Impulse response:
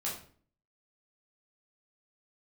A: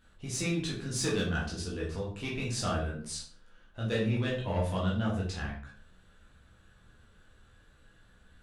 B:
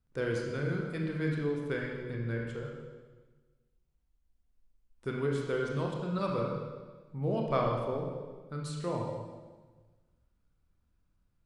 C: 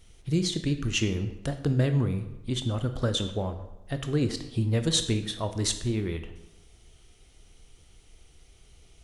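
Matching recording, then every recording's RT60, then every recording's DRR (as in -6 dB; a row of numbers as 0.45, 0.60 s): A; 0.50, 1.3, 0.95 s; -5.5, -1.0, 7.5 dB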